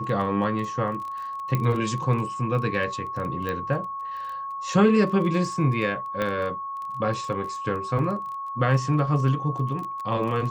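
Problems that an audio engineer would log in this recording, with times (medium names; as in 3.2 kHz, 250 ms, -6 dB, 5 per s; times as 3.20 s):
crackle 16 per s -32 dBFS
whine 1.1 kHz -30 dBFS
1.55 s: pop -12 dBFS
3.49 s: pop -17 dBFS
6.22 s: pop -14 dBFS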